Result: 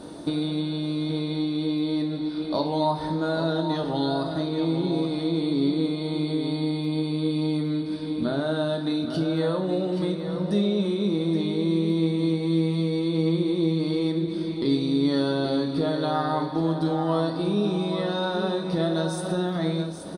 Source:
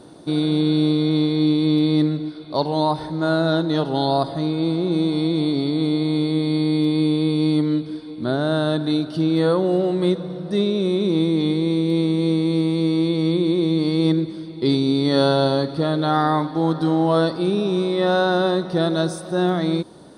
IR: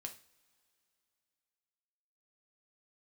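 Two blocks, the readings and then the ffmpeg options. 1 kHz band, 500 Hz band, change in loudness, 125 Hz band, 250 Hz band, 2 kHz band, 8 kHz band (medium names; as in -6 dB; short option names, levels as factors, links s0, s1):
-6.0 dB, -5.5 dB, -5.5 dB, -5.0 dB, -5.0 dB, -6.5 dB, no reading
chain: -filter_complex "[0:a]acompressor=threshold=0.0398:ratio=4,aecho=1:1:825:0.376[s0];[1:a]atrim=start_sample=2205,asetrate=41013,aresample=44100[s1];[s0][s1]afir=irnorm=-1:irlink=0,volume=2.37"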